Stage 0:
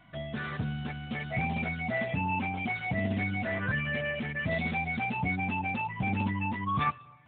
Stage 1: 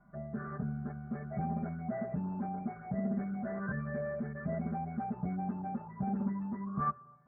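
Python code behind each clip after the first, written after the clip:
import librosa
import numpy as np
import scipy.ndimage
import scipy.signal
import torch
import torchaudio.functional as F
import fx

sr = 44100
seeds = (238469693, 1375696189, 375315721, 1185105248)

y = scipy.signal.sosfilt(scipy.signal.butter(8, 1500.0, 'lowpass', fs=sr, output='sos'), x)
y = fx.peak_eq(y, sr, hz=930.0, db=-11.0, octaves=0.27)
y = y + 0.98 * np.pad(y, (int(5.0 * sr / 1000.0), 0))[:len(y)]
y = y * 10.0 ** (-6.0 / 20.0)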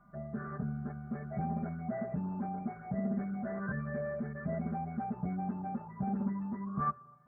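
y = x + 10.0 ** (-67.0 / 20.0) * np.sin(2.0 * np.pi * 1200.0 * np.arange(len(x)) / sr)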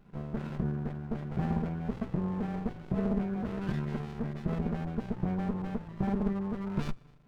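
y = fx.running_max(x, sr, window=65)
y = y * 10.0 ** (6.0 / 20.0)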